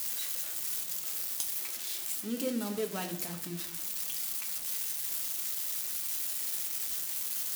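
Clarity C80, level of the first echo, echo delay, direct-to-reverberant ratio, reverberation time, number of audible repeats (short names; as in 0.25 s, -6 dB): 14.0 dB, none, none, 3.5 dB, 0.70 s, none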